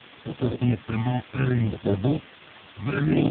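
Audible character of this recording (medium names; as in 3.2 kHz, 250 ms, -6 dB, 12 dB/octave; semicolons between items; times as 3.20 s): aliases and images of a low sample rate 1 kHz, jitter 0%; phasing stages 12, 0.65 Hz, lowest notch 410–2300 Hz; a quantiser's noise floor 6-bit, dither triangular; AMR-NB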